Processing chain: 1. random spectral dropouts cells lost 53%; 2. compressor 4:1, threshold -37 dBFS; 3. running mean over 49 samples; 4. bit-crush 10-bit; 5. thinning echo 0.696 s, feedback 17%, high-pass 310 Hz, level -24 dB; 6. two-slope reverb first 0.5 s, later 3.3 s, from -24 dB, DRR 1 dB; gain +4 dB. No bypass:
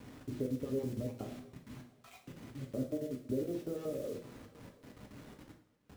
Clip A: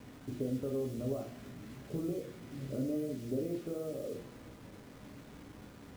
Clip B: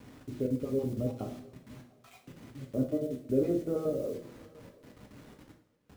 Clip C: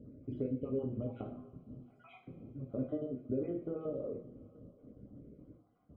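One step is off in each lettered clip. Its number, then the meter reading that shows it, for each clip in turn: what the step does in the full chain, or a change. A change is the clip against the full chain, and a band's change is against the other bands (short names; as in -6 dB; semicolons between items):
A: 1, crest factor change -1.5 dB; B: 2, mean gain reduction 3.0 dB; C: 4, distortion -19 dB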